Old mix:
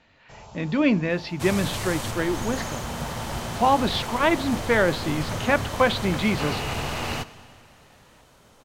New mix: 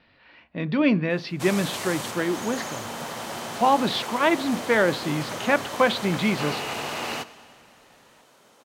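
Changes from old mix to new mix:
first sound: muted
second sound: add high-pass filter 250 Hz 12 dB per octave

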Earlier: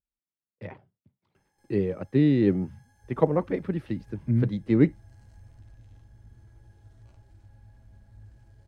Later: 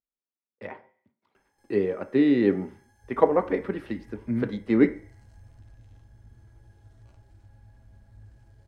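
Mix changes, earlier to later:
speech: add low-shelf EQ 240 Hz −9.5 dB
reverb: on, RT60 0.50 s

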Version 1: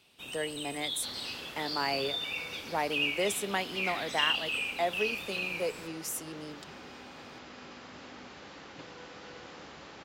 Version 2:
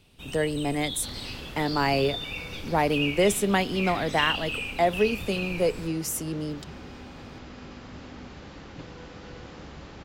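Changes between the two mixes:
speech +5.5 dB
master: remove high-pass filter 540 Hz 6 dB per octave

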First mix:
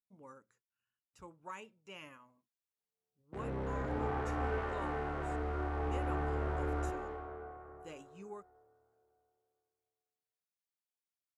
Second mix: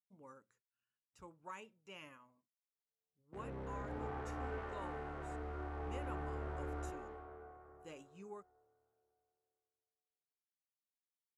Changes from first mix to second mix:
speech −3.0 dB
background −7.5 dB

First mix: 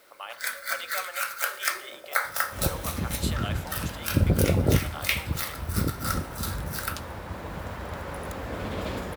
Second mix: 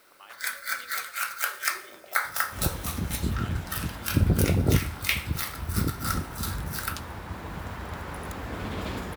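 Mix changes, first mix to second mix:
speech −10.5 dB
master: add parametric band 550 Hz −7 dB 0.45 octaves

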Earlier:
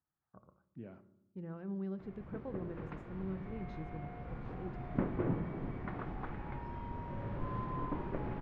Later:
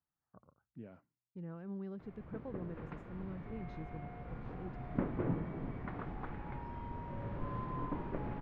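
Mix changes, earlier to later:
background: add high-shelf EQ 7,800 Hz −5 dB
reverb: off

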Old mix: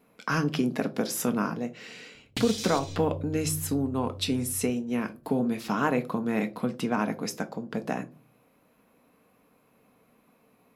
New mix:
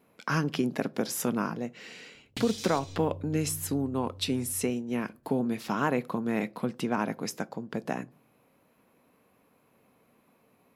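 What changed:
speech: send −10.0 dB
background −5.0 dB

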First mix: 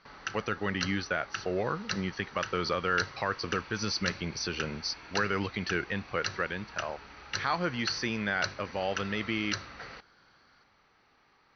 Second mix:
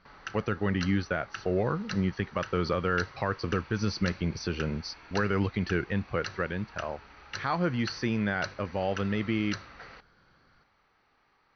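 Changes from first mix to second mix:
background: add low-shelf EQ 480 Hz −11.5 dB
master: add spectral tilt −2.5 dB per octave

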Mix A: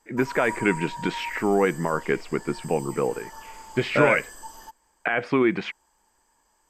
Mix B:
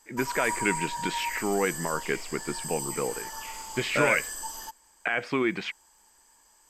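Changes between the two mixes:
speech −6.5 dB
master: add high-shelf EQ 2,100 Hz +10 dB

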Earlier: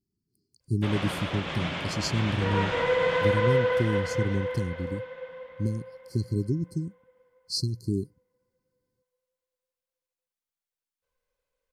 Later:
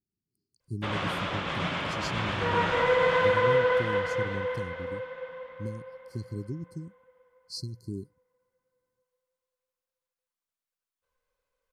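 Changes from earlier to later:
speech −8.5 dB
background: add parametric band 1,200 Hz +5 dB 0.88 octaves

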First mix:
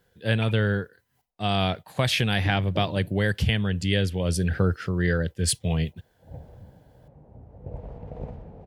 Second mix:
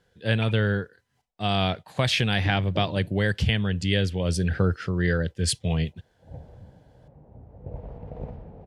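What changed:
speech: add high-shelf EQ 5,100 Hz +8 dB
master: add high-frequency loss of the air 73 metres

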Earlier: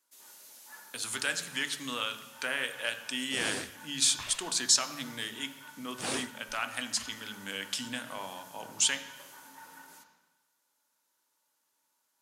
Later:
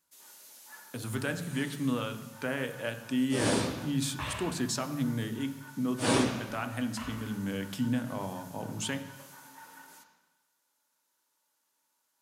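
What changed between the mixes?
speech: remove meter weighting curve ITU-R 468
second sound: send on

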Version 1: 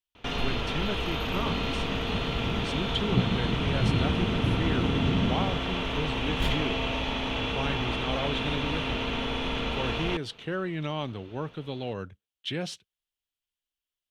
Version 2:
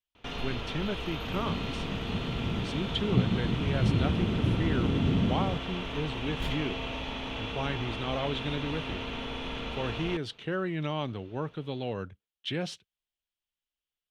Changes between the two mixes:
speech: add high-shelf EQ 6,000 Hz −6.5 dB
first sound −6.0 dB

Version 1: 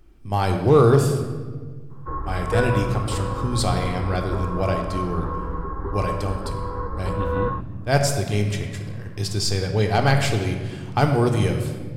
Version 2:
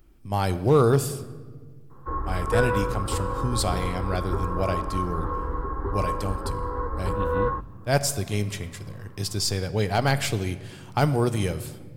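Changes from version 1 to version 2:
speech: send −11.0 dB
master: add high-shelf EQ 11,000 Hz +11.5 dB

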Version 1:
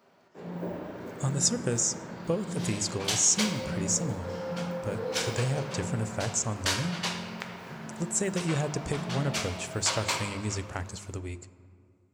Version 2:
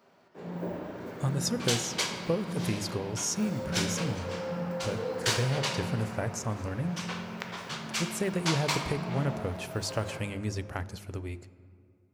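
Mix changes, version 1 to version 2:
speech: remove low-pass with resonance 7,600 Hz, resonance Q 5.1
second sound: entry −1.40 s

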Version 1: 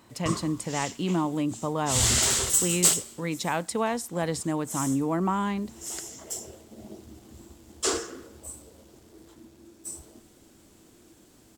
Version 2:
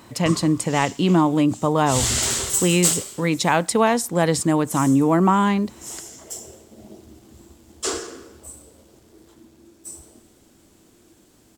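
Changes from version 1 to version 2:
speech +9.5 dB
background: send +9.0 dB

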